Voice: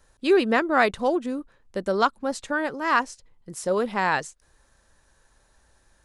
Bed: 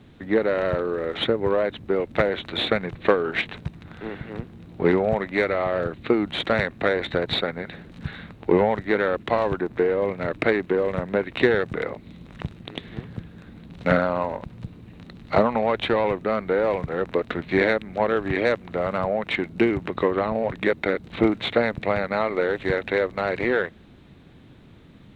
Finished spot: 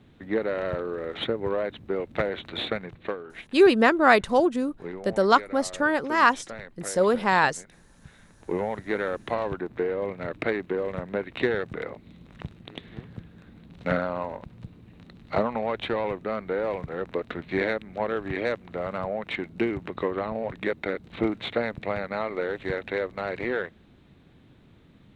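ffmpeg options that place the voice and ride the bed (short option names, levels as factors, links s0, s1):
-filter_complex "[0:a]adelay=3300,volume=1.33[s0];[1:a]volume=2,afade=t=out:st=2.58:d=0.7:silence=0.251189,afade=t=in:st=8.19:d=0.73:silence=0.266073[s1];[s0][s1]amix=inputs=2:normalize=0"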